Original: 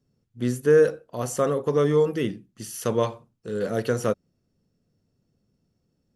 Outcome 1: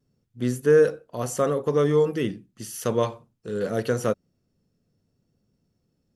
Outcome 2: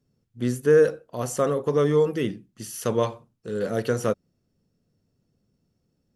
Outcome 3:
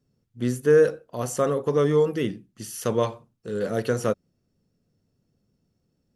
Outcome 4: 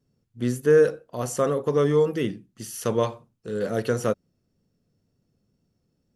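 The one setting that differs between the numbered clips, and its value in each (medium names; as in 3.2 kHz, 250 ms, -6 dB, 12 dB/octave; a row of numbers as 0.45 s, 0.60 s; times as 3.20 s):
vibrato, rate: 0.79 Hz, 13 Hz, 6.4 Hz, 2 Hz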